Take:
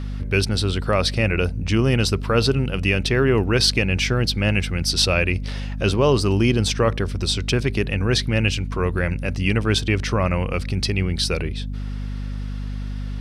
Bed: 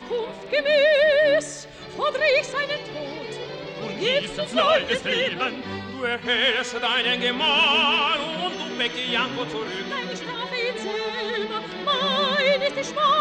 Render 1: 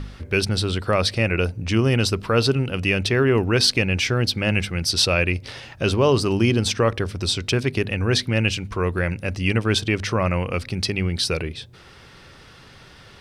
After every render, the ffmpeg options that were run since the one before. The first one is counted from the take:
-af "bandreject=f=50:t=h:w=4,bandreject=f=100:t=h:w=4,bandreject=f=150:t=h:w=4,bandreject=f=200:t=h:w=4,bandreject=f=250:t=h:w=4"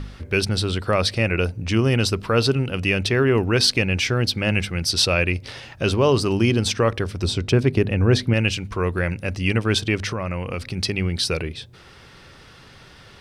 -filter_complex "[0:a]asettb=1/sr,asplit=3[s0][s1][s2];[s0]atrim=end=7.234[s3];[s1]atrim=start=7.23:end=8.34,asetpts=PTS-STARTPTS,afade=t=in:d=0.004:c=qsin,afade=t=out:st=1.106:d=0.004:c=qsin,tiltshelf=f=1200:g=5[s4];[s2]atrim=start=8.336[s5];[s3][s4]acrossfade=d=0.004:c1=hsin:c2=qsin[s6];[s6][s5]acrossfade=d=0.004:c1=qsin:c2=hsin,asettb=1/sr,asplit=3[s7][s8][s9];[s7]atrim=end=10.104[s10];[s8]atrim=start=10.1:end=10.78,asetpts=PTS-STARTPTS,afade=t=in:d=0.004:c=qsin,afade=t=out:st=0.676:d=0.004:c=qsin,acompressor=threshold=0.0794:ratio=6:attack=3.2:release=140:knee=1:detection=peak[s11];[s9]atrim=start=10.776[s12];[s10][s11]acrossfade=d=0.004:c1=hsin:c2=qsin[s13];[s13][s12]acrossfade=d=0.004:c1=qsin:c2=hsin"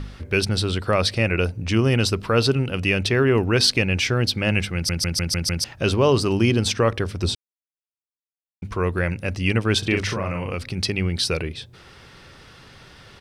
-filter_complex "[0:a]asplit=3[s0][s1][s2];[s0]afade=t=out:st=9.83:d=0.02[s3];[s1]asplit=2[s4][s5];[s5]adelay=41,volume=0.631[s6];[s4][s6]amix=inputs=2:normalize=0,afade=t=in:st=9.83:d=0.02,afade=t=out:st=10.52:d=0.02[s7];[s2]afade=t=in:st=10.52:d=0.02[s8];[s3][s7][s8]amix=inputs=3:normalize=0,asplit=9[s9][s10][s11][s12][s13][s14][s15][s16][s17];[s9]atrim=end=4.892[s18];[s10]atrim=start=4.738:end=4.892[s19];[s11]atrim=start=4.738:end=4.892[s20];[s12]atrim=start=4.738:end=4.892[s21];[s13]atrim=start=4.738:end=4.892[s22];[s14]atrim=start=4.738:end=4.892[s23];[s15]atrim=start=5.638:end=7.35,asetpts=PTS-STARTPTS,afade=t=out:st=1.708:d=0.004:c=hsin[s24];[s16]atrim=start=7.35:end=8.62,asetpts=PTS-STARTPTS,volume=0[s25];[s17]atrim=start=8.62,asetpts=PTS-STARTPTS,afade=t=in:d=0.004:c=hsin[s26];[s18][s19]acrossfade=d=0.004:c1=hsin:c2=hsin[s27];[s27][s20]acrossfade=d=0.004:c1=hsin:c2=hsin[s28];[s28][s21]acrossfade=d=0.004:c1=hsin:c2=hsin[s29];[s29][s22]acrossfade=d=0.004:c1=hsin:c2=hsin[s30];[s30][s23]acrossfade=d=0.004:c1=hsin:c2=hsin[s31];[s24][s25][s26]concat=n=3:v=0:a=1[s32];[s31][s32]acrossfade=d=0.004:c1=hsin:c2=hsin"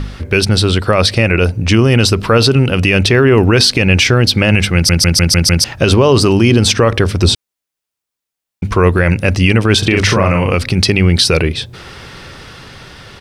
-af "dynaudnorm=f=470:g=7:m=1.58,alimiter=level_in=3.55:limit=0.891:release=50:level=0:latency=1"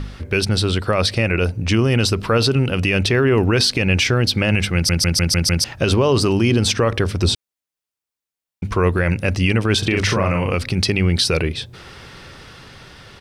-af "volume=0.473"

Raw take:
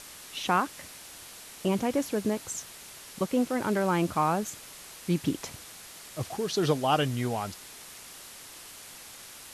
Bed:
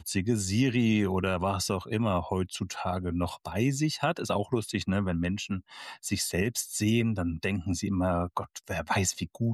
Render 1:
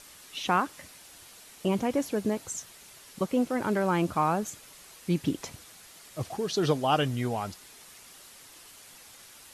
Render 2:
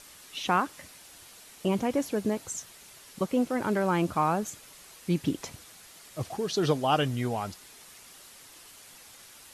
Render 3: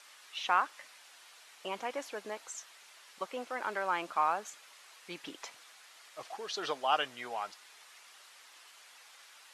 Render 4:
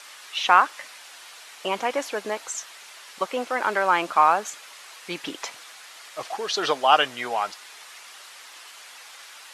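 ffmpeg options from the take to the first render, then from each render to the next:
-af "afftdn=nr=6:nf=-47"
-af anull
-af "highpass=890,aemphasis=mode=reproduction:type=50fm"
-af "volume=3.98"

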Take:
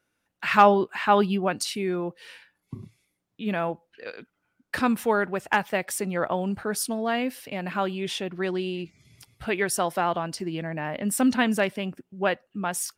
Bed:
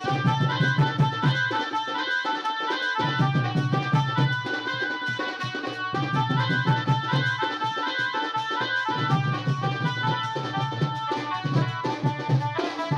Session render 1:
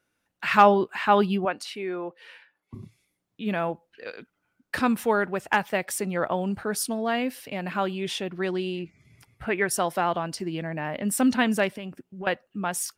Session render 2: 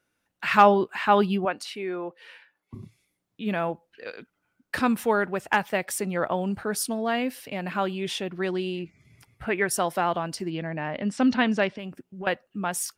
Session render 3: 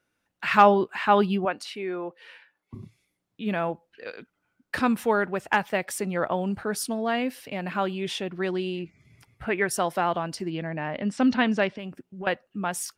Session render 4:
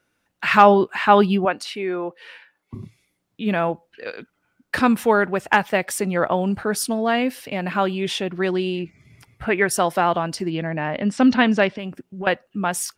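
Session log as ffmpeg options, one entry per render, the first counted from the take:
-filter_complex "[0:a]asettb=1/sr,asplit=3[s0][s1][s2];[s0]atrim=end=1.454[s3];[s1]atrim=start=1.45:end=2.74,asetpts=PTS-STARTPTS,afade=t=in:d=0.004:c=qsin,afade=t=out:st=1.286:d=0.004:c=qsin,bass=f=250:g=-15,treble=f=4000:g=-12[s4];[s2]atrim=start=2.736[s5];[s3][s4]acrossfade=d=0.004:c1=hsin:c2=qsin[s6];[s6][s5]acrossfade=d=0.004:c1=qsin:c2=hsin,asettb=1/sr,asplit=3[s7][s8][s9];[s7]atrim=end=8.794[s10];[s8]atrim=start=8.79:end=9.71,asetpts=PTS-STARTPTS,afade=t=in:d=0.004:c=qsin,afade=t=out:st=0.916:d=0.004:c=qsin,highshelf=f=2700:t=q:w=1.5:g=-7[s11];[s9]atrim=start=9.706[s12];[s10][s11]acrossfade=d=0.004:c1=hsin:c2=qsin[s13];[s13][s12]acrossfade=d=0.004:c1=qsin:c2=hsin,asettb=1/sr,asplit=3[s14][s15][s16];[s14]atrim=end=11.684[s17];[s15]atrim=start=11.68:end=12.27,asetpts=PTS-STARTPTS,afade=t=in:d=0.004:c=qsin,afade=t=out:st=0.586:d=0.004:c=qsin,acompressor=threshold=0.0251:ratio=6:attack=3.2:release=140:knee=1:detection=peak[s18];[s16]atrim=start=12.266[s19];[s17][s18]acrossfade=d=0.004:c1=hsin:c2=qsin[s20];[s20][s19]acrossfade=d=0.004:c1=qsin:c2=hsin"
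-filter_complex "[0:a]asettb=1/sr,asplit=3[s0][s1][s2];[s0]atrim=end=10.504[s3];[s1]atrim=start=10.5:end=11.79,asetpts=PTS-STARTPTS,afade=t=in:d=0.004:c=qsin,afade=t=out:st=1.286:d=0.004:c=qsin,lowpass=f=5700:w=0.5412,lowpass=f=5700:w=1.3066[s4];[s2]atrim=start=11.786[s5];[s3][s4]acrossfade=d=0.004:c1=hsin:c2=qsin[s6];[s6][s5]acrossfade=d=0.004:c1=qsin:c2=hsin"
-af "highshelf=f=8100:g=-5"
-af "volume=2,alimiter=limit=0.891:level=0:latency=1"

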